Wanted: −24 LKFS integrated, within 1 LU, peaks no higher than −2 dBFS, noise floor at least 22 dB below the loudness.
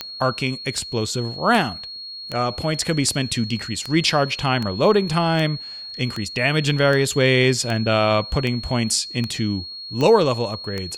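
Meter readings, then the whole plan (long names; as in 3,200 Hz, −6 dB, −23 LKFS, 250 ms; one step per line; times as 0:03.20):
number of clicks 15; interfering tone 4,300 Hz; level of the tone −32 dBFS; integrated loudness −20.5 LKFS; sample peak −5.0 dBFS; target loudness −24.0 LKFS
→ click removal
notch filter 4,300 Hz, Q 30
level −3.5 dB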